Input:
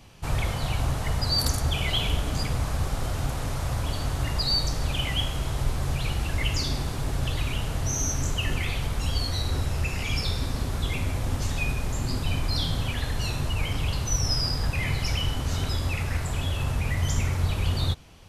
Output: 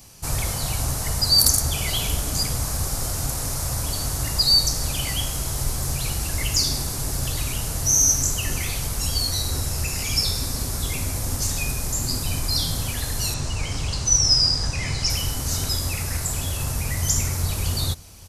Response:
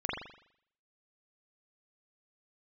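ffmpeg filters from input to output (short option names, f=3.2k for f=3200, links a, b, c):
-filter_complex "[0:a]asettb=1/sr,asplit=3[a][b][c];[a]atrim=end=13.344[d];[b]atrim=start=13.34:end=15.1,asetpts=PTS-STARTPTS,afade=t=in:d=0.004:c=qsin,afade=t=out:st=1.756:d=0.004:c=qsin,lowpass=f=7.7k:w=0.5412,lowpass=f=7.7k:w=1.3066[e];[c]atrim=start=15.096[f];[d][e]acrossfade=d=0.004:c1=hsin:c2=qsin[g];[g][f]acrossfade=d=0.004:c1=qsin:c2=hsin,aexciter=amount=5.1:drive=4.8:freq=4.6k,aecho=1:1:553:0.0631"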